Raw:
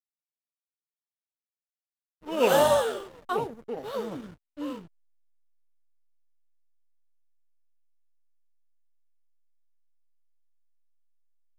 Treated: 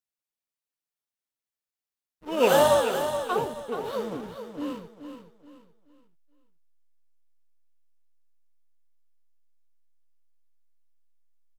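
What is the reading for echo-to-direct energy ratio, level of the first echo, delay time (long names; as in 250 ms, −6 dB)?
−8.5 dB, −9.0 dB, 427 ms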